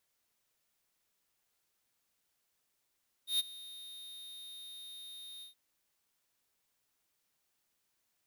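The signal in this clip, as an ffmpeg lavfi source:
-f lavfi -i "aevalsrc='0.0355*(2*lt(mod(3700*t,1),0.5)-1)':d=2.273:s=44100,afade=t=in:d=0.124,afade=t=out:st=0.124:d=0.023:silence=0.106,afade=t=out:st=2.15:d=0.123"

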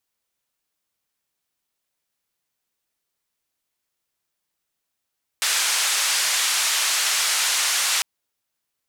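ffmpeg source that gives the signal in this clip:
-f lavfi -i "anoisesrc=c=white:d=2.6:r=44100:seed=1,highpass=f=1100,lowpass=f=8400,volume=-12dB"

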